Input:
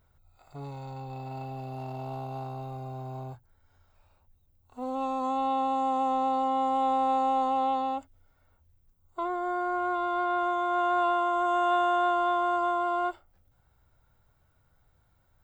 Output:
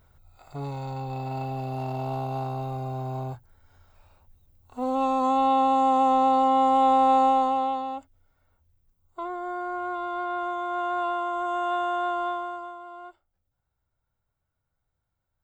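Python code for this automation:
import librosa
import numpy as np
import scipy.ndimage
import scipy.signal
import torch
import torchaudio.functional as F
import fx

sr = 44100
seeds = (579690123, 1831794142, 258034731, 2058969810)

y = fx.gain(x, sr, db=fx.line((7.24, 6.5), (7.85, -2.0), (12.27, -2.0), (12.79, -14.0)))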